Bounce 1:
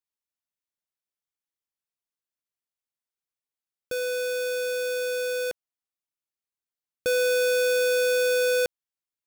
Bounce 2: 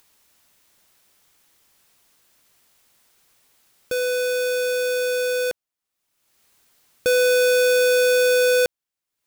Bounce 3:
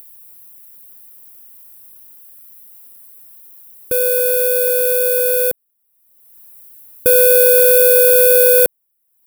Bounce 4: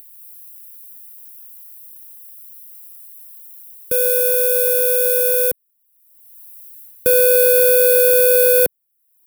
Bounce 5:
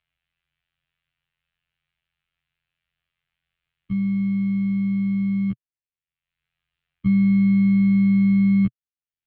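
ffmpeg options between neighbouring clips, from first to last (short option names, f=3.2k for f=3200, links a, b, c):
-af "acompressor=mode=upward:threshold=-46dB:ratio=2.5,volume=5.5dB"
-af "aexciter=amount=13.3:drive=5.2:freq=9.2k,tiltshelf=f=780:g=6,volume=3dB"
-filter_complex "[0:a]acrossover=split=220|1300|4100[a][b][c][d];[b]acrusher=bits=5:mix=0:aa=0.000001[e];[d]dynaudnorm=f=120:g=3:m=4dB[f];[a][e][c][f]amix=inputs=4:normalize=0,volume=-2dB"
-af "afftfilt=real='hypot(re,im)*cos(PI*b)':imag='0':win_size=2048:overlap=0.75,highpass=f=260:t=q:w=0.5412,highpass=f=260:t=q:w=1.307,lowpass=f=3.2k:t=q:w=0.5176,lowpass=f=3.2k:t=q:w=0.7071,lowpass=f=3.2k:t=q:w=1.932,afreqshift=-320,equalizer=f=125:t=o:w=1:g=6,equalizer=f=500:t=o:w=1:g=-4,equalizer=f=1k:t=o:w=1:g=-11,equalizer=f=2k:t=o:w=1:g=-4"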